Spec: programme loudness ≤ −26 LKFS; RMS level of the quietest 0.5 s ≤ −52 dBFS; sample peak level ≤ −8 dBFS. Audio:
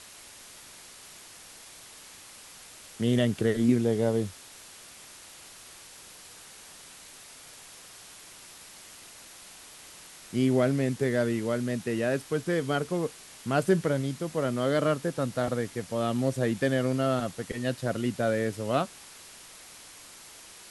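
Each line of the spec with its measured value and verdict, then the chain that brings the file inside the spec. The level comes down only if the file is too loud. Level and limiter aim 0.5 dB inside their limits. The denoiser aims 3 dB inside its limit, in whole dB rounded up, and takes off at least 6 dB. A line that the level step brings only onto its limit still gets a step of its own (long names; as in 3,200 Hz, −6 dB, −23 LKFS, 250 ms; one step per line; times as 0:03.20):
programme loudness −28.0 LKFS: in spec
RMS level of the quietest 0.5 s −49 dBFS: out of spec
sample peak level −11.5 dBFS: in spec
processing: broadband denoise 6 dB, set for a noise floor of −49 dBFS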